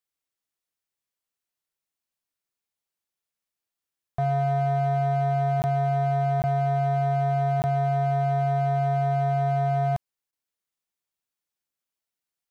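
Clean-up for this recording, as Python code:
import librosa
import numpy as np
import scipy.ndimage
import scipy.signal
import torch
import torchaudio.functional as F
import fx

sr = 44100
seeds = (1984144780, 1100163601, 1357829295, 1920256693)

y = fx.fix_declip(x, sr, threshold_db=-19.5)
y = fx.fix_interpolate(y, sr, at_s=(5.62, 6.42, 7.62, 10.31), length_ms=19.0)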